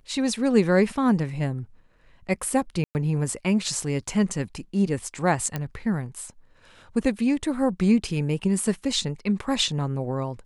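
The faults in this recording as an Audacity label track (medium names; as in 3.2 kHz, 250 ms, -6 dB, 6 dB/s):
2.840000	2.950000	dropout 109 ms
5.560000	5.560000	pop -14 dBFS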